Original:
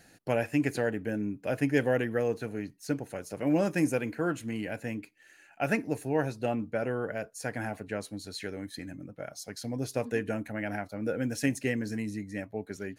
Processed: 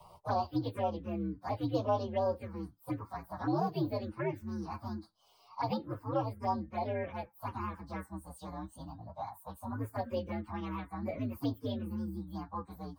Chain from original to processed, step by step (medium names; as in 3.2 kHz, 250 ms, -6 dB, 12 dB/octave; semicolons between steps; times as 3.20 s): frequency axis rescaled in octaves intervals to 127%; ten-band graphic EQ 250 Hz -3 dB, 1 kHz +8 dB, 2 kHz -3 dB, 4 kHz +7 dB; touch-sensitive phaser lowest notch 280 Hz, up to 2 kHz, full sweep at -24.5 dBFS; resonant high shelf 2.2 kHz -7 dB, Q 3; three bands compressed up and down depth 40%; trim -1.5 dB